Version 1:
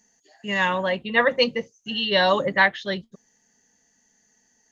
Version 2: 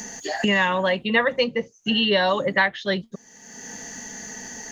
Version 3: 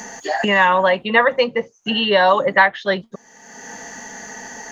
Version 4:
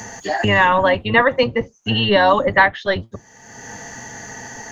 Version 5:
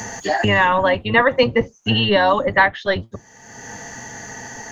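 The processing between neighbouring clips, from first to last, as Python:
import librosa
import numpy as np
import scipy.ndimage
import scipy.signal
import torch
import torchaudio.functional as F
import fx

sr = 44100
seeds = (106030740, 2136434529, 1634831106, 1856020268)

y1 = fx.band_squash(x, sr, depth_pct=100)
y2 = fx.peak_eq(y1, sr, hz=960.0, db=11.5, octaves=2.4)
y2 = F.gain(torch.from_numpy(y2), -2.0).numpy()
y3 = fx.octave_divider(y2, sr, octaves=1, level_db=0.0)
y4 = fx.rider(y3, sr, range_db=4, speed_s=0.5)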